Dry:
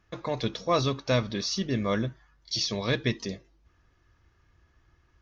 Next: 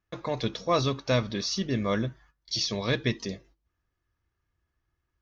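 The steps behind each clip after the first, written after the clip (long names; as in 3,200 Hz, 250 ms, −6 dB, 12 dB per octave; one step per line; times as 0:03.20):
noise gate −55 dBFS, range −15 dB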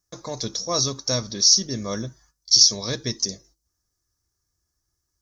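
high shelf with overshoot 4,000 Hz +13.5 dB, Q 3
level −1.5 dB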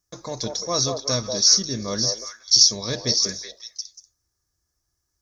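echo through a band-pass that steps 187 ms, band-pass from 640 Hz, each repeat 1.4 octaves, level −1 dB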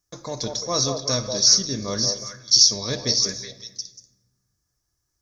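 rectangular room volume 690 cubic metres, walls mixed, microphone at 0.33 metres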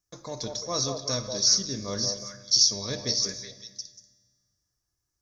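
tuned comb filter 100 Hz, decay 1.7 s, harmonics all, mix 50%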